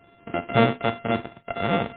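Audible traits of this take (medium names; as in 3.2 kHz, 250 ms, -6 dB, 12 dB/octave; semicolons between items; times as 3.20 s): a buzz of ramps at a fixed pitch in blocks of 64 samples; random-step tremolo 4.1 Hz, depth 65%; MP3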